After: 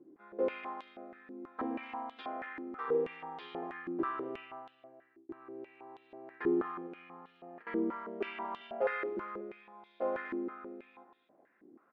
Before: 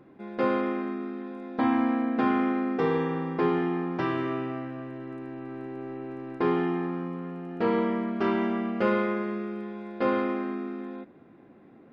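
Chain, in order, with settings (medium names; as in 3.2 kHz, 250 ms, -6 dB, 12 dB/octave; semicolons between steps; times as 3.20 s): 2.22–2.88 s: bass shelf 490 Hz -11 dB; 6.86–7.67 s: compressor with a negative ratio -32 dBFS, ratio -0.5; 8.60–9.17 s: comb 7.3 ms, depth 92%; speakerphone echo 240 ms, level -8 dB; 4.39–5.29 s: fade out; step-sequenced band-pass 6.2 Hz 330–3500 Hz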